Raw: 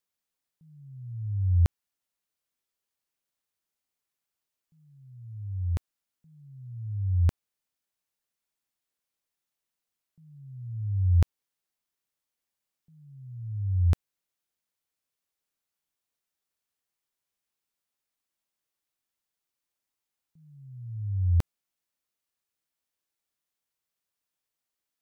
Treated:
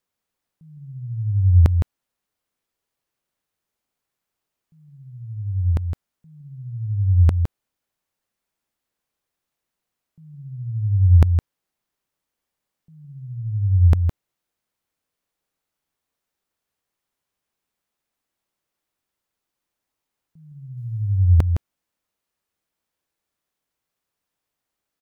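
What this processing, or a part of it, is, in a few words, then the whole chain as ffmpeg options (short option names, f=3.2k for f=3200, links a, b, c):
behind a face mask: -filter_complex "[0:a]asettb=1/sr,asplit=3[a][b][c];[a]atrim=end=20.774[d];[b]atrim=start=20.77:end=21.38,asetpts=PTS-STARTPTS,afade=t=in:d=0.004:c=qsin,afade=t=out:st=0.606:d=0.004:c=qsin,highshelf=f=2.1k:g=9[e];[c]atrim=start=21.376[f];[d][e]acrossfade=d=0.004:c1=hsin:c2=qsin[g];[g][f]acrossfade=d=0.004:c1=qsin:c2=hsin,highshelf=f=2.1k:g=-8,aecho=1:1:162:0.447,volume=9dB"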